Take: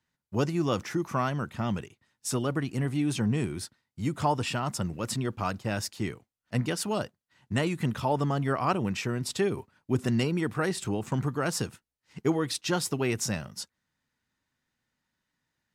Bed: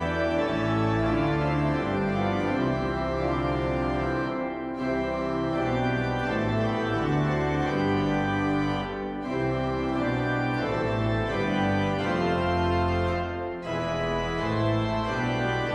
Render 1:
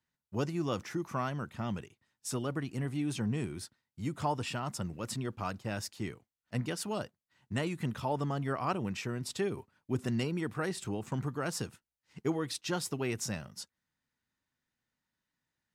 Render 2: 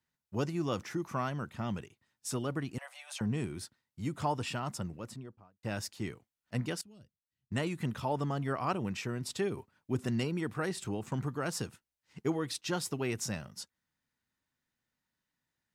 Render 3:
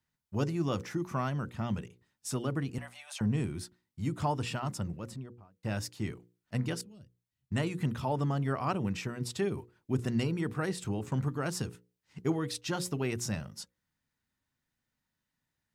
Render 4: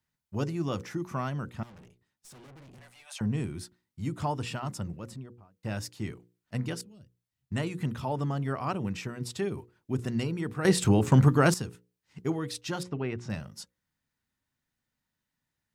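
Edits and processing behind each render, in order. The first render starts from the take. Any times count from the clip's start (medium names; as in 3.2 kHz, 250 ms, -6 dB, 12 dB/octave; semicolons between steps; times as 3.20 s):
trim -6 dB
2.78–3.21 s: steep high-pass 540 Hz 96 dB/octave; 4.63–5.63 s: studio fade out; 6.81–7.52 s: amplifier tone stack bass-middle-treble 10-0-1
bass shelf 200 Hz +7 dB; hum notches 60/120/180/240/300/360/420/480/540 Hz
1.63–3.06 s: valve stage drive 50 dB, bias 0.7; 10.65–11.54 s: gain +12 dB; 12.83–13.30 s: low-pass 2.6 kHz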